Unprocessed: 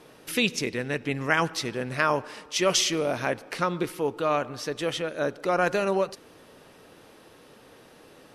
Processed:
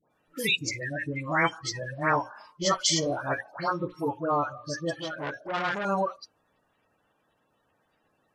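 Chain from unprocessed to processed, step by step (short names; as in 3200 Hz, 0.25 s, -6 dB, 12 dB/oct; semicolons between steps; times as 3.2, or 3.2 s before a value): bin magnitudes rounded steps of 30 dB; notches 60/120/180/240/300/360/420/480/540 Hz; spectral noise reduction 18 dB; notch 380 Hz, Q 12; dispersion highs, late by 0.108 s, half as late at 1300 Hz; 4.98–5.85 core saturation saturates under 2200 Hz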